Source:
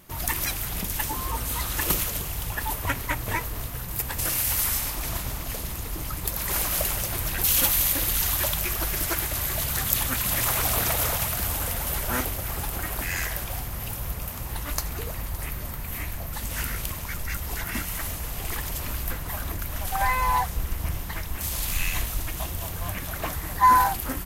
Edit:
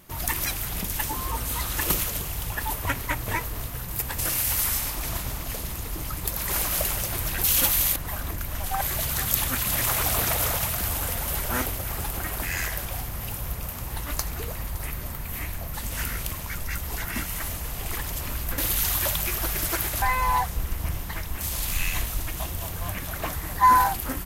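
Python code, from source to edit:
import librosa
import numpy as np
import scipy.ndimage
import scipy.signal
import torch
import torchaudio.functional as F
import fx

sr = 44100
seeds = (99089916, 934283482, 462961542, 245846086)

y = fx.edit(x, sr, fx.swap(start_s=7.96, length_s=1.44, other_s=19.17, other_length_s=0.85), tone=tone)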